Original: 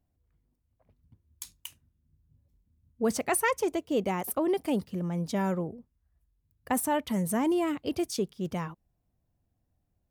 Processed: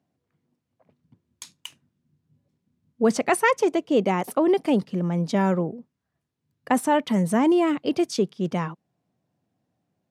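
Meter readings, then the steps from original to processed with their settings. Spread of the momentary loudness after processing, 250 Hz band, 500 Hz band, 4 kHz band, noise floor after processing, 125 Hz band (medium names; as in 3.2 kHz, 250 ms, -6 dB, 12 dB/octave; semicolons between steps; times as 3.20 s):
8 LU, +7.5 dB, +7.5 dB, +5.5 dB, -80 dBFS, +7.0 dB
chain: high-pass 140 Hz 24 dB/octave; distance through air 66 m; trim +7.5 dB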